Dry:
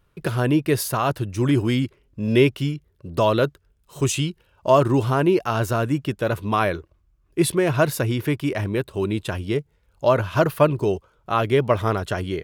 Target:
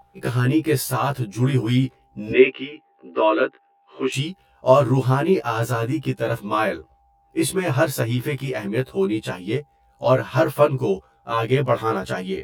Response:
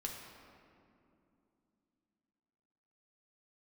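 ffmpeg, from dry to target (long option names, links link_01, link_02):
-filter_complex "[0:a]asettb=1/sr,asplit=3[link_01][link_02][link_03];[link_01]atrim=end=2.324[link_04];[link_02]atrim=start=2.32:end=4.14,asetpts=PTS-STARTPTS,afade=type=in:duration=0.004:curve=qsin,afade=type=out:start_time=1.816:duration=0.004:curve=qsin,highpass=frequency=270:width=0.5412,highpass=frequency=270:width=1.3066,equalizer=frequency=280:width_type=q:width=4:gain=4,equalizer=frequency=410:width_type=q:width=4:gain=4,equalizer=frequency=790:width_type=q:width=4:gain=-8,equalizer=frequency=1200:width_type=q:width=4:gain=4,equalizer=frequency=1800:width_type=q:width=4:gain=6,equalizer=frequency=2600:width_type=q:width=4:gain=6,lowpass=frequency=3000:width=0.5412,lowpass=frequency=3000:width=1.3066[link_05];[link_03]atrim=start=4.136[link_06];[link_04][link_05]acrossfade=duration=0.004:curve1=hsin:curve2=qsin[link_07];[link_07][link_06]acrossfade=duration=0.004:curve1=qsin:curve2=hsin,aeval=exprs='val(0)+0.0126*sin(2*PI*800*n/s)':channel_layout=same,afftfilt=real='re*1.73*eq(mod(b,3),0)':imag='im*1.73*eq(mod(b,3),0)':win_size=2048:overlap=0.75,volume=2.5dB"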